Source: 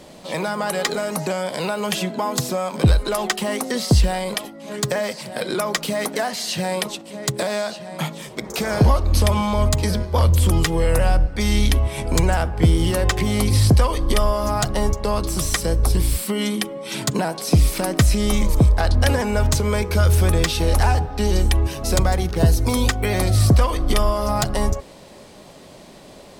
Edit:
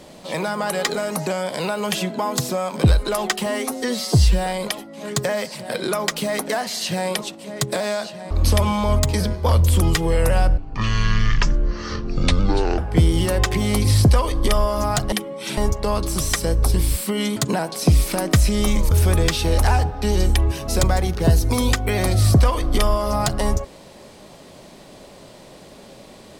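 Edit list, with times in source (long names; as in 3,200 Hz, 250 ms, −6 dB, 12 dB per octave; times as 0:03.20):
0:03.46–0:04.13: time-stretch 1.5×
0:07.97–0:09.00: remove
0:11.27–0:12.44: play speed 53%
0:16.57–0:17.02: move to 0:14.78
0:18.57–0:20.07: remove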